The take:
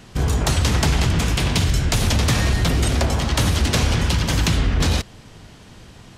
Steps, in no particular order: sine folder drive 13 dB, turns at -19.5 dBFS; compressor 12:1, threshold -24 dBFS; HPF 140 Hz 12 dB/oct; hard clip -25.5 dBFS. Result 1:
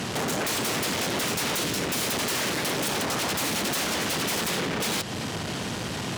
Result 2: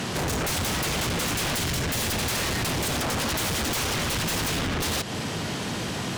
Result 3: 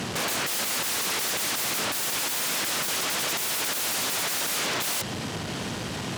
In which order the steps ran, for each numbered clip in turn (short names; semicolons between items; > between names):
compressor > sine folder > hard clip > HPF; compressor > HPF > sine folder > hard clip; sine folder > compressor > hard clip > HPF